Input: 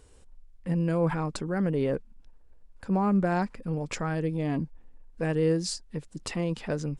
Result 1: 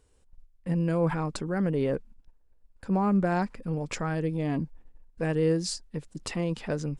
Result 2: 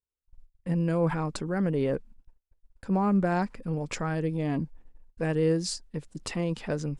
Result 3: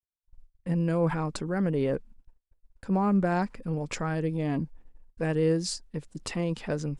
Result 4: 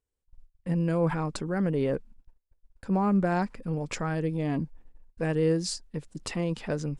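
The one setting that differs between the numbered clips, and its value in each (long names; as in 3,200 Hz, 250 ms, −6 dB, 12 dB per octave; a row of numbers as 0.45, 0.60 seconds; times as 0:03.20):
noise gate, range: −9, −43, −60, −31 decibels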